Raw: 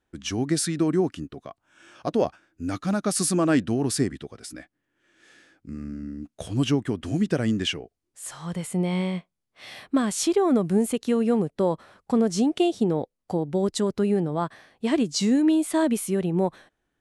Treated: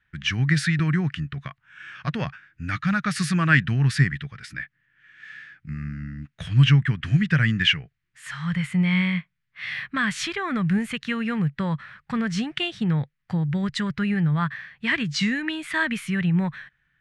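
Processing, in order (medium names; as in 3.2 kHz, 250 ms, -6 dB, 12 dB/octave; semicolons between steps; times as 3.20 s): FFT filter 100 Hz 0 dB, 140 Hz +9 dB, 270 Hz -14 dB, 380 Hz -18 dB, 710 Hz -15 dB, 1.8 kHz +12 dB, 7.3 kHz -13 dB, 12 kHz -18 dB; 0.79–1.48 s: upward compressor, threshold -29 dBFS; trim +4.5 dB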